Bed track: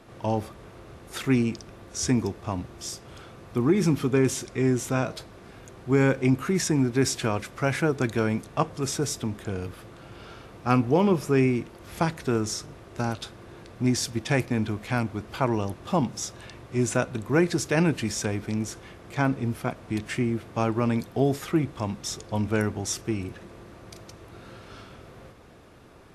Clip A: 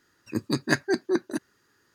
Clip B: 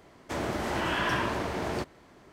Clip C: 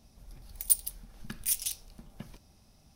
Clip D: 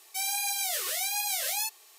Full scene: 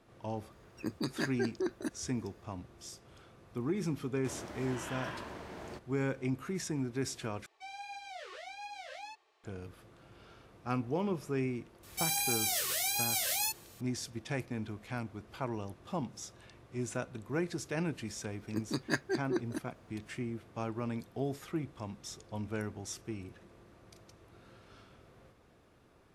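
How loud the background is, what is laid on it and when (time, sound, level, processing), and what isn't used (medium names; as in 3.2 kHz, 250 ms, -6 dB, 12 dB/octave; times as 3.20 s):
bed track -12.5 dB
0.51 s: add A -5 dB + compression 3:1, threshold -25 dBFS
3.95 s: add B -14 dB
7.46 s: replace with D -3.5 dB + tape spacing loss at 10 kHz 37 dB
11.83 s: add D -2 dB
18.21 s: add A -9 dB
not used: C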